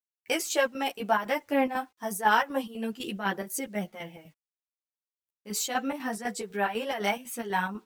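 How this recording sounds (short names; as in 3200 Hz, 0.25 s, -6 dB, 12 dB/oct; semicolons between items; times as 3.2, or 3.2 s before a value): chopped level 4 Hz, depth 60%, duty 65%; a quantiser's noise floor 12-bit, dither none; a shimmering, thickened sound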